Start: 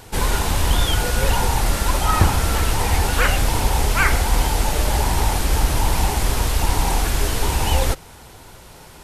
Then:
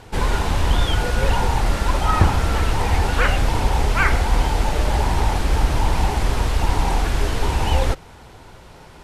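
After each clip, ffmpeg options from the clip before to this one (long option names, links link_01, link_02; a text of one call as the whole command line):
ffmpeg -i in.wav -af "aemphasis=mode=reproduction:type=50fm" out.wav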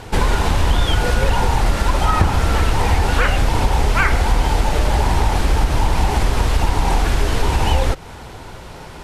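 ffmpeg -i in.wav -af "acompressor=threshold=-21dB:ratio=3,volume=8dB" out.wav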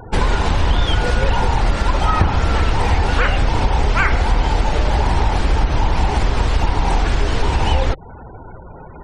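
ffmpeg -i in.wav -af "afftfilt=real='re*gte(hypot(re,im),0.0251)':imag='im*gte(hypot(re,im),0.0251)':win_size=1024:overlap=0.75" out.wav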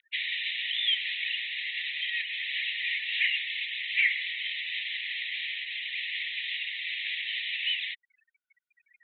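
ffmpeg -i in.wav -af "asuperpass=centerf=2700:order=20:qfactor=1.3" out.wav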